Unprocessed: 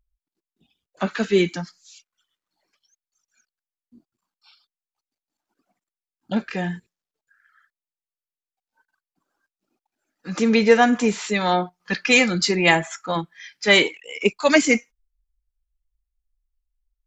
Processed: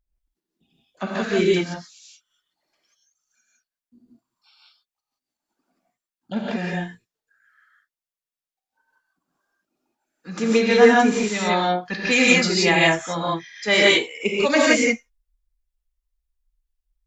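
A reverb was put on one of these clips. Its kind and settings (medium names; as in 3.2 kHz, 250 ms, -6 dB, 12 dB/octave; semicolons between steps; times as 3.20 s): gated-style reverb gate 200 ms rising, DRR -4.5 dB; trim -4.5 dB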